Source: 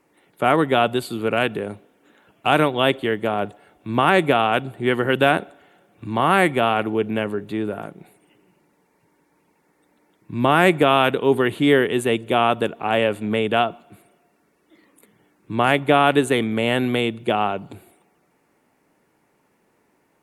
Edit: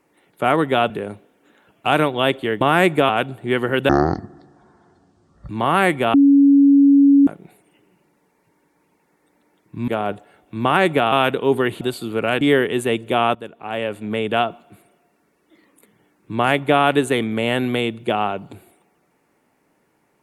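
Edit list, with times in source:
0:00.90–0:01.50: move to 0:11.61
0:03.21–0:04.45: swap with 0:10.44–0:10.92
0:05.25–0:06.05: play speed 50%
0:06.70–0:07.83: beep over 280 Hz −8 dBFS
0:12.55–0:13.60: fade in, from −14.5 dB

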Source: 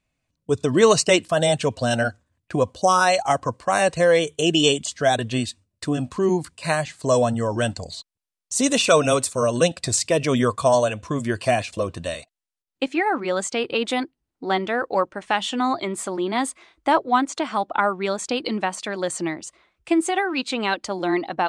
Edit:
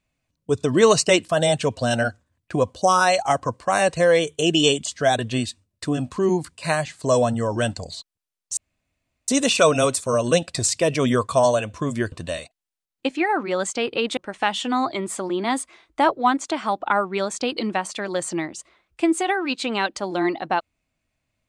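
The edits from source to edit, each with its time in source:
0:08.57: splice in room tone 0.71 s
0:11.41–0:11.89: remove
0:13.94–0:15.05: remove

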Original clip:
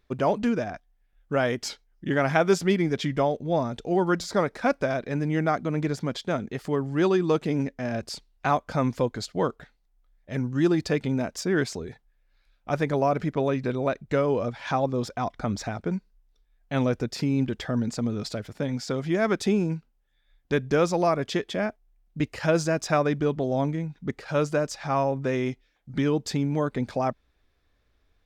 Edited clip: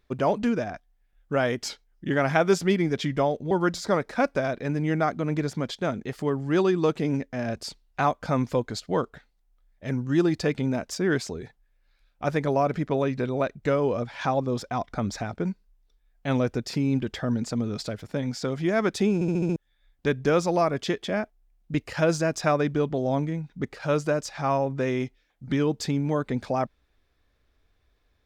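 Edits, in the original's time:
0:03.51–0:03.97: remove
0:19.60: stutter in place 0.07 s, 6 plays

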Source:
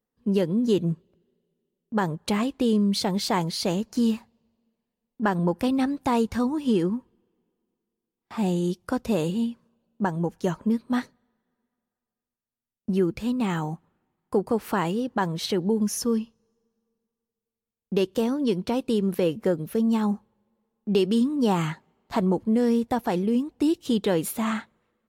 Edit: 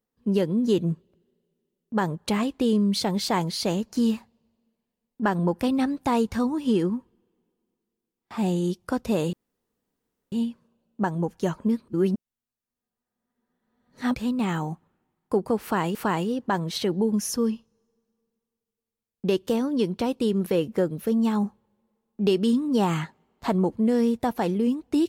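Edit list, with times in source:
0:09.33: splice in room tone 0.99 s
0:10.89–0:13.16: reverse
0:14.63–0:14.96: repeat, 2 plays

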